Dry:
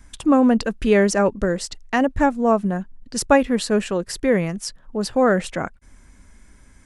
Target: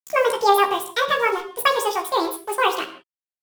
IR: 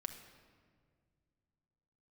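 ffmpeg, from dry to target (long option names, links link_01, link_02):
-filter_complex "[0:a]highpass=frequency=84:width=0.5412,highpass=frequency=84:width=1.3066,lowshelf=frequency=190:gain=-6,acrusher=bits=5:mix=0:aa=0.5,asplit=2[link_01][link_02];[link_02]adelay=30,volume=-3dB[link_03];[link_01][link_03]amix=inputs=2:normalize=0[link_04];[1:a]atrim=start_sample=2205,afade=type=out:start_time=0.41:duration=0.01,atrim=end_sample=18522[link_05];[link_04][link_05]afir=irnorm=-1:irlink=0,asetrate=88200,aresample=44100"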